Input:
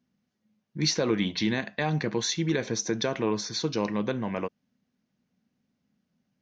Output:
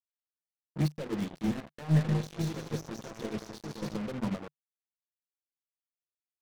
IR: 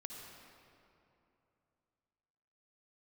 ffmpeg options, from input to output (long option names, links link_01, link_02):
-filter_complex "[0:a]asplit=2[link_01][link_02];[link_02]adelay=71,lowpass=frequency=840:poles=1,volume=-14dB,asplit=2[link_03][link_04];[link_04]adelay=71,lowpass=frequency=840:poles=1,volume=0.43,asplit=2[link_05][link_06];[link_06]adelay=71,lowpass=frequency=840:poles=1,volume=0.43,asplit=2[link_07][link_08];[link_08]adelay=71,lowpass=frequency=840:poles=1,volume=0.43[link_09];[link_01][link_03][link_05][link_07][link_09]amix=inputs=5:normalize=0,asoftclip=type=tanh:threshold=-31dB,bandreject=frequency=60:width_type=h:width=6,bandreject=frequency=120:width_type=h:width=6,bandreject=frequency=180:width_type=h:width=6,bandreject=frequency=240:width_type=h:width=6,bandreject=frequency=300:width_type=h:width=6,bandreject=frequency=360:width_type=h:width=6,bandreject=frequency=420:width_type=h:width=6,bandreject=frequency=480:width_type=h:width=6,asplit=3[link_10][link_11][link_12];[link_10]afade=type=out:start_time=1.93:duration=0.02[link_13];[link_11]aecho=1:1:180|297|373|422.5|454.6:0.631|0.398|0.251|0.158|0.1,afade=type=in:start_time=1.93:duration=0.02,afade=type=out:start_time=3.96:duration=0.02[link_14];[link_12]afade=type=in:start_time=3.96:duration=0.02[link_15];[link_13][link_14][link_15]amix=inputs=3:normalize=0,acompressor=threshold=-36dB:ratio=5,tiltshelf=frequency=940:gain=6,agate=range=-16dB:threshold=-32dB:ratio=16:detection=peak,acontrast=62,acrusher=bits=6:mix=0:aa=0.5,aeval=exprs='sgn(val(0))*max(abs(val(0))-0.00266,0)':channel_layout=same,adynamicequalizer=threshold=0.00398:dfrequency=150:dqfactor=6.3:tfrequency=150:tqfactor=6.3:attack=5:release=100:ratio=0.375:range=3:mode=boostabove:tftype=bell,volume=4dB"